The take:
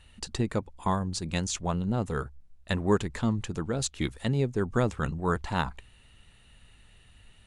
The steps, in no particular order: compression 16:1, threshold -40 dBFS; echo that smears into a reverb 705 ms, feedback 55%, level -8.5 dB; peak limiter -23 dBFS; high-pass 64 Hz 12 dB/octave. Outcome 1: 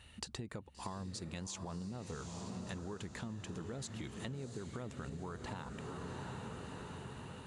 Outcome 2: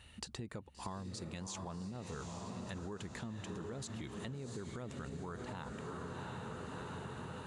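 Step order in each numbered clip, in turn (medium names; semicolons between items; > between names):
high-pass > peak limiter > echo that smears into a reverb > compression; echo that smears into a reverb > peak limiter > compression > high-pass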